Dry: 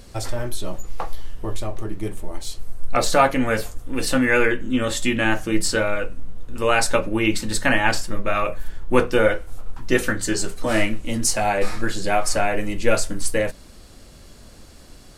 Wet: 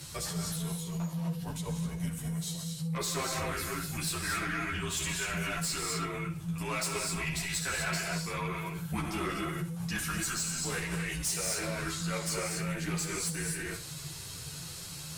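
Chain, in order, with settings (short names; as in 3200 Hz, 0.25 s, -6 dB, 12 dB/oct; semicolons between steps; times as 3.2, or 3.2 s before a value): octaver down 1 oct, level 0 dB; low shelf 130 Hz +5 dB; frequency shift -170 Hz; in parallel at -2 dB: compressor, threshold -18 dBFS, peak gain reduction 12 dB; on the sum: tilt +3 dB/oct; on a send at -2.5 dB: reverb, pre-delay 3 ms; on the sum: soft clip -12 dBFS, distortion -12 dB; limiter -22.5 dBFS, peak gain reduction 10.5 dB; flutter echo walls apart 11.1 m, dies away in 0.32 s; ensemble effect; gain -2.5 dB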